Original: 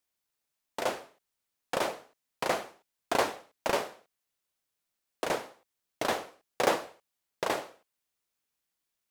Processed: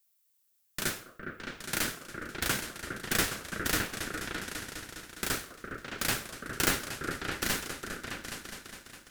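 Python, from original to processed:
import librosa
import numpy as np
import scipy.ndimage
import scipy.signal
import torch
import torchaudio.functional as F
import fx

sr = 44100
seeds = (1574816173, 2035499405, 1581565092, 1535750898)

y = fx.riaa(x, sr, side='recording')
y = fx.echo_opening(y, sr, ms=205, hz=200, octaves=2, feedback_pct=70, wet_db=0)
y = y * np.sin(2.0 * np.pi * 880.0 * np.arange(len(y)) / sr)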